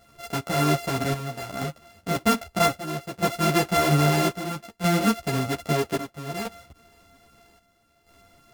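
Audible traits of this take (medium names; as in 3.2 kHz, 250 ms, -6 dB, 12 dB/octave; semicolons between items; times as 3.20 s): a buzz of ramps at a fixed pitch in blocks of 64 samples; chopped level 0.62 Hz, depth 65%, duty 70%; a shimmering, thickened sound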